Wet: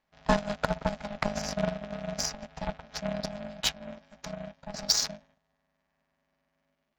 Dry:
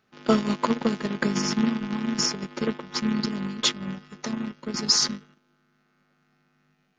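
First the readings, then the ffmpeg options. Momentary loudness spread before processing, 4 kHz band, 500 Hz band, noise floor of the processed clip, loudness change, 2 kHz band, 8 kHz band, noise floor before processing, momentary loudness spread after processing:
11 LU, −6.0 dB, −2.5 dB, −79 dBFS, −6.0 dB, −4.0 dB, −4.5 dB, −69 dBFS, 15 LU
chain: -af "aeval=exprs='val(0)*sin(2*PI*410*n/s)':channel_layout=same,aeval=exprs='0.501*(cos(1*acos(clip(val(0)/0.501,-1,1)))-cos(1*PI/2))+0.0398*(cos(7*acos(clip(val(0)/0.501,-1,1)))-cos(7*PI/2))':channel_layout=same"

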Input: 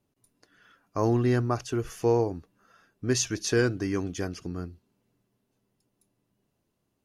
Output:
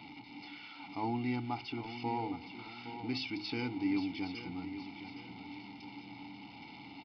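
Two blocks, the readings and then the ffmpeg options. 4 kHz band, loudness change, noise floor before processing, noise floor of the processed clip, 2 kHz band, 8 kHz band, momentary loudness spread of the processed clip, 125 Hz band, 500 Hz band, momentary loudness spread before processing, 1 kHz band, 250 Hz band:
−5.0 dB, −12.0 dB, −78 dBFS, −51 dBFS, −6.5 dB, below −30 dB, 14 LU, −14.5 dB, −17.5 dB, 13 LU, −3.5 dB, −6.0 dB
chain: -filter_complex "[0:a]aeval=exprs='val(0)+0.5*0.0178*sgn(val(0))':channel_layout=same,highshelf=frequency=2600:gain=9,bandreject=frequency=1600:width=22,aecho=1:1:1.4:0.68,bandreject=frequency=52.24:width_type=h:width=4,bandreject=frequency=104.48:width_type=h:width=4,bandreject=frequency=156.72:width_type=h:width=4,bandreject=frequency=208.96:width_type=h:width=4,bandreject=frequency=261.2:width_type=h:width=4,bandreject=frequency=313.44:width_type=h:width=4,bandreject=frequency=365.68:width_type=h:width=4,bandreject=frequency=417.92:width_type=h:width=4,bandreject=frequency=470.16:width_type=h:width=4,bandreject=frequency=522.4:width_type=h:width=4,bandreject=frequency=574.64:width_type=h:width=4,crystalizer=i=2.5:c=0,asplit=3[link_01][link_02][link_03];[link_01]bandpass=frequency=300:width_type=q:width=8,volume=0dB[link_04];[link_02]bandpass=frequency=870:width_type=q:width=8,volume=-6dB[link_05];[link_03]bandpass=frequency=2240:width_type=q:width=8,volume=-9dB[link_06];[link_04][link_05][link_06]amix=inputs=3:normalize=0,asplit=2[link_07][link_08];[link_08]aecho=0:1:815|1630|2445|3260:0.282|0.11|0.0429|0.0167[link_09];[link_07][link_09]amix=inputs=2:normalize=0,aresample=11025,aresample=44100,volume=3.5dB"

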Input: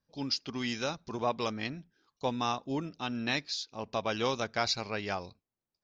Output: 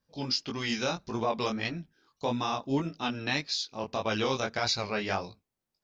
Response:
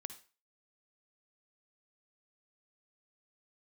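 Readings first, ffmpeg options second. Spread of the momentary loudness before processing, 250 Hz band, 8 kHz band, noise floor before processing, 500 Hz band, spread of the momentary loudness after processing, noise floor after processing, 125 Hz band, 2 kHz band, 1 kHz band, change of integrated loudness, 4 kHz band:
6 LU, +3.0 dB, can't be measured, below −85 dBFS, +2.5 dB, 5 LU, below −85 dBFS, +4.0 dB, +3.0 dB, +1.5 dB, +2.5 dB, +3.0 dB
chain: -af "alimiter=limit=-22dB:level=0:latency=1:release=21,flanger=delay=17.5:depth=6.5:speed=1.7,volume=7dB"

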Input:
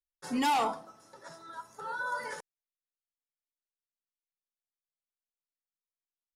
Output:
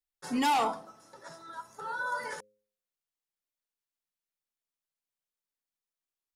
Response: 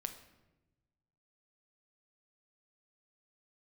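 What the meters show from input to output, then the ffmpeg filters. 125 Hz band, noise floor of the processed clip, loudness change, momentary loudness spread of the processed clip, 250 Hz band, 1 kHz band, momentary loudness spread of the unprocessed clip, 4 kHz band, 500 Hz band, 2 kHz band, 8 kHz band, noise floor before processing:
+1.0 dB, below −85 dBFS, +1.0 dB, 21 LU, +1.0 dB, +1.0 dB, 21 LU, +1.0 dB, +1.0 dB, +1.0 dB, +1.0 dB, below −85 dBFS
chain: -af "bandreject=frequency=104.9:width_type=h:width=4,bandreject=frequency=209.8:width_type=h:width=4,bandreject=frequency=314.7:width_type=h:width=4,bandreject=frequency=419.6:width_type=h:width=4,bandreject=frequency=524.5:width_type=h:width=4,volume=1dB"

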